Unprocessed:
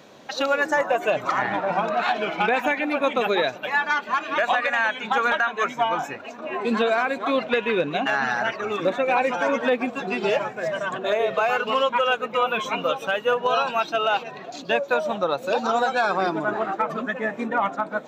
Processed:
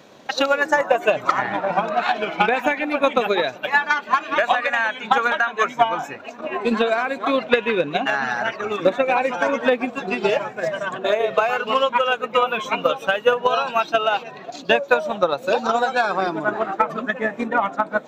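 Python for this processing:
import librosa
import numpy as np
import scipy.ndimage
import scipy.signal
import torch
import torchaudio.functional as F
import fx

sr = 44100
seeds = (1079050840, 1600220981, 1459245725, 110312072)

y = fx.transient(x, sr, attack_db=8, sustain_db=0)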